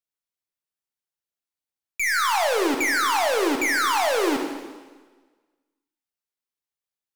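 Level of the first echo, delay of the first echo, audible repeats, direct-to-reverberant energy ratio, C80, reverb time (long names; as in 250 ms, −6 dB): no echo audible, no echo audible, no echo audible, 3.0 dB, 7.0 dB, 1.4 s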